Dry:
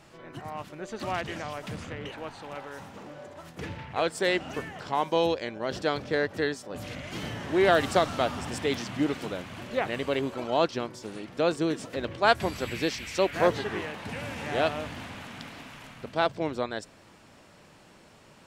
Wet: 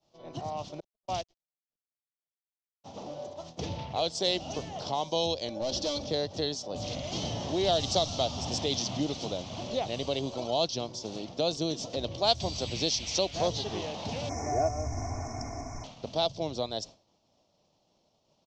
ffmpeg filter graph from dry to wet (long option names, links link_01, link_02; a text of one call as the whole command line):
ffmpeg -i in.wav -filter_complex "[0:a]asettb=1/sr,asplit=3[link_01][link_02][link_03];[link_01]atrim=end=0.804[link_04];[link_02]atrim=start=0.8:end=2.84,asetpts=PTS-STARTPTS,afade=type=in:duration=0.004:curve=qsin,afade=type=out:start_time=2.036:duration=0.004:curve=qsin,agate=range=-43dB:threshold=-31dB:ratio=16:release=100:detection=peak,acrusher=bits=9:dc=4:mix=0:aa=0.000001[link_05];[link_03]atrim=start=2.836[link_06];[link_04][link_05]acrossfade=duration=0.004:curve1=hsin:curve2=qsin[link_07];[link_07][link_06]acrossfade=duration=0.004:curve1=qsin:curve2=hsin,asettb=1/sr,asplit=3[link_08][link_09][link_10];[link_08]atrim=end=5.484[link_11];[link_09]atrim=start=5.48:end=6.06,asetpts=PTS-STARTPTS,afade=type=in:duration=0.004:curve=qsin,afade=type=out:start_time=0.576:duration=0.004:curve=qsin,aecho=1:1:3.5:0.66,atrim=end_sample=25578,asoftclip=type=hard:threshold=-28dB[link_12];[link_10]atrim=start=6.056[link_13];[link_11][link_12]acrossfade=duration=0.004:curve1=hsin:curve2=qsin[link_14];[link_14][link_13]acrossfade=duration=0.004:curve1=qsin:curve2=hsin,asettb=1/sr,asplit=3[link_15][link_16][link_17];[link_15]atrim=end=14.294[link_18];[link_16]atrim=start=14.29:end=15.84,asetpts=PTS-STARTPTS,afade=type=in:duration=0.004:curve=qsin,afade=type=out:start_time=1.546:duration=0.004:curve=qsin,aecho=1:1:2.8:1,atrim=end_sample=68355,asubboost=boost=7.5:cutoff=170,asuperstop=centerf=3500:order=20:qfactor=1.2[link_19];[link_17]atrim=start=15.836[link_20];[link_18][link_19]acrossfade=duration=0.004:curve1=hsin:curve2=qsin[link_21];[link_21][link_20]acrossfade=duration=0.004:curve1=qsin:curve2=hsin,agate=range=-33dB:threshold=-41dB:ratio=3:detection=peak,firequalizer=gain_entry='entry(420,0);entry(660,7);entry(1600,-16);entry(3300,4);entry(6000,8);entry(10000,-28)':delay=0.05:min_phase=1,acrossover=split=140|3000[link_22][link_23][link_24];[link_23]acompressor=threshold=-39dB:ratio=2[link_25];[link_22][link_25][link_24]amix=inputs=3:normalize=0,volume=3dB" out.wav